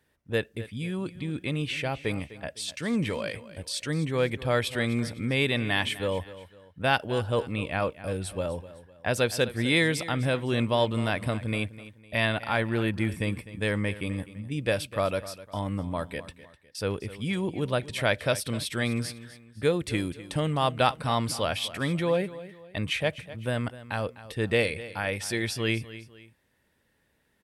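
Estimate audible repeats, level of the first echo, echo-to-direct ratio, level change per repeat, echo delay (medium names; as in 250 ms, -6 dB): 2, -16.0 dB, -15.5 dB, -8.5 dB, 253 ms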